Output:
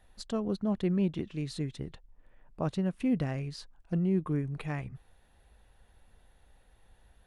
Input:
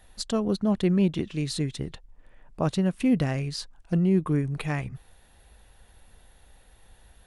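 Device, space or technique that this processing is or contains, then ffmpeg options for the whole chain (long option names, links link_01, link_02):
behind a face mask: -af "highshelf=frequency=3500:gain=-7.5,volume=-6dB"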